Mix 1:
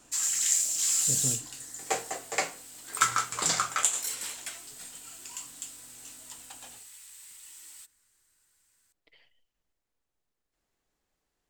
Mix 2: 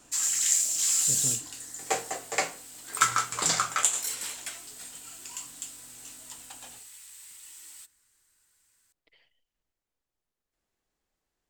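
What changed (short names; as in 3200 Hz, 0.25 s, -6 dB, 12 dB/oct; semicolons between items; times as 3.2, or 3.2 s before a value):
speech: send off; first sound: send +11.0 dB; second sound: send +8.5 dB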